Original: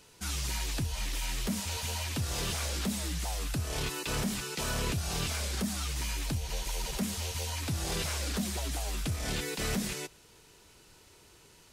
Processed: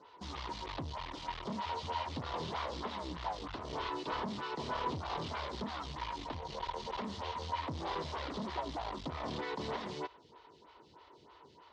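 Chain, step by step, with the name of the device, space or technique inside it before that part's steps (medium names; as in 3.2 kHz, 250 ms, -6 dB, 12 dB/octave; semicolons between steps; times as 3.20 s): vibe pedal into a guitar amplifier (lamp-driven phase shifter 3.2 Hz; valve stage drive 41 dB, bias 0.7; cabinet simulation 91–4000 Hz, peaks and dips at 120 Hz -5 dB, 190 Hz -5 dB, 990 Hz +10 dB, 1.6 kHz -5 dB, 2.5 kHz -8 dB); trim +7.5 dB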